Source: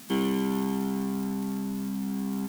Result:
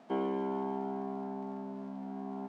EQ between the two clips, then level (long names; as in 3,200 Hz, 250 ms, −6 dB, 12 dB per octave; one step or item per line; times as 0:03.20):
resonant band-pass 630 Hz, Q 3.1
high-frequency loss of the air 64 metres
+7.0 dB